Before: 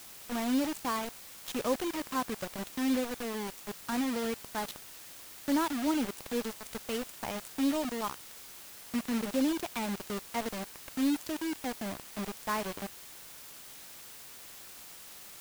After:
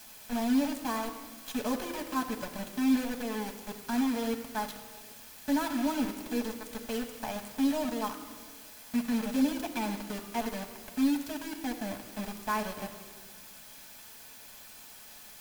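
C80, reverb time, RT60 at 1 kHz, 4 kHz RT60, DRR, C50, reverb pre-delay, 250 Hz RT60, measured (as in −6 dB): 10.5 dB, 1.6 s, 1.5 s, 1.2 s, 2.0 dB, 9.5 dB, 5 ms, 2.1 s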